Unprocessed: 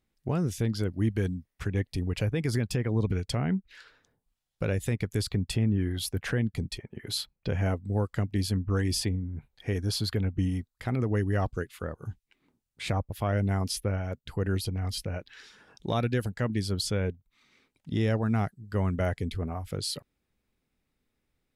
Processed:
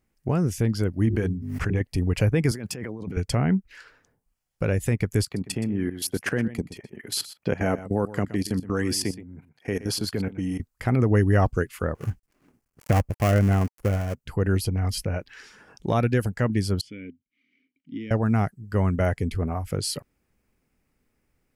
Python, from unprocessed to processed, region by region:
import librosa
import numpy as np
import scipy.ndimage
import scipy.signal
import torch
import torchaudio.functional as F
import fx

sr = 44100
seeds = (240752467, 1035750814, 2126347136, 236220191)

y = fx.chain(x, sr, fx.high_shelf(hz=5200.0, db=-8.0),
    fx.hum_notches(base_hz=50, count=8),
    fx.pre_swell(db_per_s=37.0), at=(1.05, 1.81))
y = fx.chain(y, sr, fx.highpass(hz=180.0, slope=12),
    fx.over_compress(threshold_db=-40.0, ratio=-1.0), at=(2.51, 3.17))
y = fx.chain(y, sr, fx.highpass(hz=170.0, slope=12),
    fx.level_steps(step_db=17),
    fx.echo_single(ms=122, db=-15.0), at=(5.24, 10.6))
y = fx.chain(y, sr, fx.dead_time(dead_ms=0.28),
    fx.notch(hz=920.0, q=12.0), at=(11.95, 14.15))
y = fx.chain(y, sr, fx.vowel_filter(vowel='i'),
    fx.peak_eq(hz=2900.0, db=5.0, octaves=0.23), at=(16.81, 18.11))
y = fx.rider(y, sr, range_db=10, speed_s=2.0)
y = fx.peak_eq(y, sr, hz=3700.0, db=-10.5, octaves=0.43)
y = y * librosa.db_to_amplitude(6.0)